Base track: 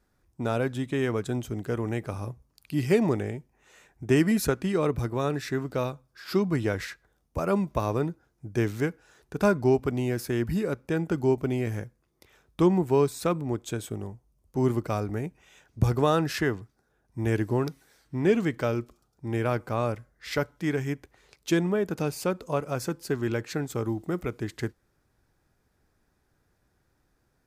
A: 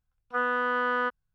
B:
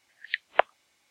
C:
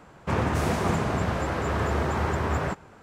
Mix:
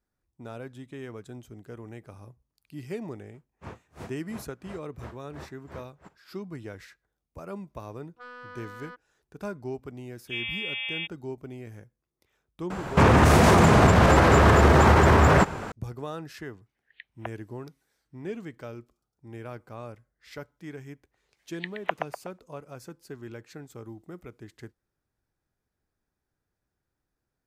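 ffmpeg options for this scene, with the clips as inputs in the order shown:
-filter_complex "[3:a]asplit=2[a][b];[1:a]asplit=2[c][d];[2:a]asplit=2[e][f];[0:a]volume=-13dB[g];[a]aeval=exprs='val(0)*pow(10,-38*(0.5-0.5*cos(2*PI*2.9*n/s))/20)':c=same[h];[c]asoftclip=type=tanh:threshold=-23dB[i];[d]lowpass=f=3.2k:t=q:w=0.5098,lowpass=f=3.2k:t=q:w=0.6013,lowpass=f=3.2k:t=q:w=0.9,lowpass=f=3.2k:t=q:w=2.563,afreqshift=-3800[j];[b]alimiter=level_in=23dB:limit=-1dB:release=50:level=0:latency=1[k];[e]lowpass=f=3.5k:w=0.5412,lowpass=f=3.5k:w=1.3066[l];[f]asplit=2[m][n];[n]adelay=123,lowpass=f=1.9k:p=1,volume=-3.5dB,asplit=2[o][p];[p]adelay=123,lowpass=f=1.9k:p=1,volume=0.5,asplit=2[q][r];[r]adelay=123,lowpass=f=1.9k:p=1,volume=0.5,asplit=2[s][t];[t]adelay=123,lowpass=f=1.9k:p=1,volume=0.5,asplit=2[u][v];[v]adelay=123,lowpass=f=1.9k:p=1,volume=0.5,asplit=2[w][x];[x]adelay=123,lowpass=f=1.9k:p=1,volume=0.5,asplit=2[y][z];[z]adelay=123,lowpass=f=1.9k:p=1,volume=0.5[aa];[m][o][q][s][u][w][y][aa]amix=inputs=8:normalize=0[ab];[h]atrim=end=3.02,asetpts=PTS-STARTPTS,volume=-14dB,afade=t=in:d=0.004:c=hsin,afade=t=out:st=3.016:d=0.004:c=hsin,adelay=3340[ac];[i]atrim=end=1.34,asetpts=PTS-STARTPTS,volume=-14.5dB,afade=t=in:d=0.004:c=hsin,afade=t=out:st=1.336:d=0.004:c=hsin,adelay=346626S[ad];[j]atrim=end=1.34,asetpts=PTS-STARTPTS,volume=-6dB,afade=t=in:d=0.004:c=hsin,afade=t=out:st=1.336:d=0.004:c=hsin,adelay=9970[ae];[k]atrim=end=3.02,asetpts=PTS-STARTPTS,volume=-7.5dB,afade=t=in:d=0.004:c=hsin,afade=t=out:st=3.016:d=0.004:c=hsin,adelay=12700[af];[l]atrim=end=1.1,asetpts=PTS-STARTPTS,volume=-17dB,afade=t=in:d=0.004:c=hsin,afade=t=out:st=1.096:d=0.004:c=hsin,adelay=16660[ag];[ab]atrim=end=1.1,asetpts=PTS-STARTPTS,volume=-7dB,afade=t=in:d=0.1,afade=t=out:st=1:d=0.1,adelay=21300[ah];[g][ac][ad][ae][af][ag][ah]amix=inputs=7:normalize=0"

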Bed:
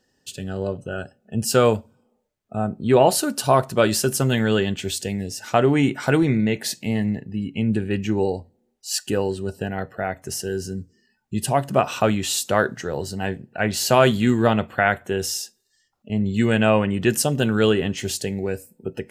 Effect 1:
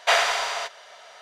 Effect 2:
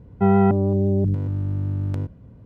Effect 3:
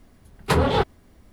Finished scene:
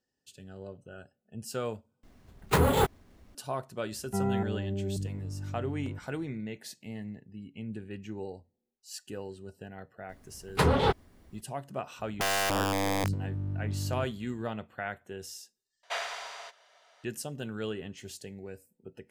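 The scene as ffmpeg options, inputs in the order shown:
-filter_complex "[3:a]asplit=2[a][b];[2:a]asplit=2[c][d];[0:a]volume=-17.5dB[e];[a]acrusher=samples=4:mix=1:aa=0.000001[f];[d]aeval=exprs='(mod(4.47*val(0)+1,2)-1)/4.47':c=same[g];[e]asplit=3[h][i][j];[h]atrim=end=2.034[k];[f]atrim=end=1.32,asetpts=PTS-STARTPTS,volume=-4dB[l];[i]atrim=start=3.346:end=15.834[m];[1:a]atrim=end=1.21,asetpts=PTS-STARTPTS,volume=-15dB[n];[j]atrim=start=17.036[o];[c]atrim=end=2.45,asetpts=PTS-STARTPTS,volume=-13.5dB,afade=t=in:d=0.004:c=hsin,afade=t=out:st=2.446:d=0.004:c=hsin,adelay=3920[p];[b]atrim=end=1.32,asetpts=PTS-STARTPTS,volume=-4.5dB,afade=t=in:d=0.004:c=hsin,afade=t=out:st=1.316:d=0.004:c=hsin,adelay=10090[q];[g]atrim=end=2.45,asetpts=PTS-STARTPTS,volume=-9dB,afade=t=in:d=0.004:c=hsin,afade=t=out:st=2.446:d=0.004:c=hsin,adelay=11990[r];[k][l]acrossfade=d=0.004:c1=hsin:c2=hsin[s];[s][m]acrossfade=d=0.004:c1=hsin:c2=hsin[t];[t][n]acrossfade=d=0.004:c1=hsin:c2=hsin[u];[u][o]acrossfade=d=0.004:c1=hsin:c2=hsin[v];[v][p][q][r]amix=inputs=4:normalize=0"

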